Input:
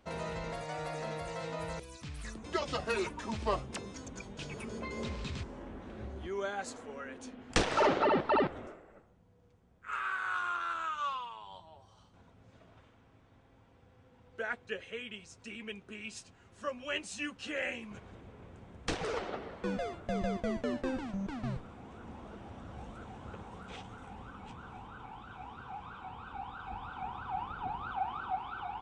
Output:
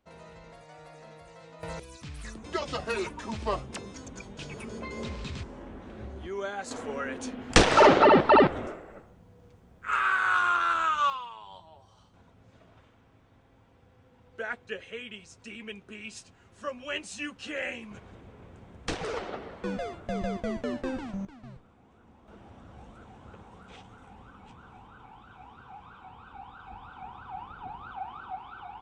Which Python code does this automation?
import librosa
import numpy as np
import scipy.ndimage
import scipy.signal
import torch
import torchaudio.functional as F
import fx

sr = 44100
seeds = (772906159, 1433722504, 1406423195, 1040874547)

y = fx.gain(x, sr, db=fx.steps((0.0, -10.5), (1.63, 2.0), (6.71, 10.0), (11.1, 2.0), (21.25, -10.0), (22.28, -3.0)))